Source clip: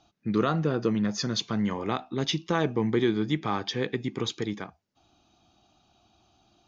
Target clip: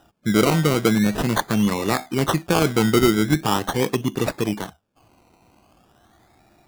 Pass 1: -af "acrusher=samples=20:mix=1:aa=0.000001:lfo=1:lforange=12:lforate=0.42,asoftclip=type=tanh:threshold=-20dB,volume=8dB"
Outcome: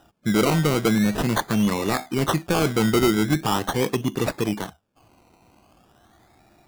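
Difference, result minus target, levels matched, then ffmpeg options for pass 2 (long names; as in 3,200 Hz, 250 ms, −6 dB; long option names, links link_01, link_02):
soft clipping: distortion +15 dB
-af "acrusher=samples=20:mix=1:aa=0.000001:lfo=1:lforange=12:lforate=0.42,asoftclip=type=tanh:threshold=-10dB,volume=8dB"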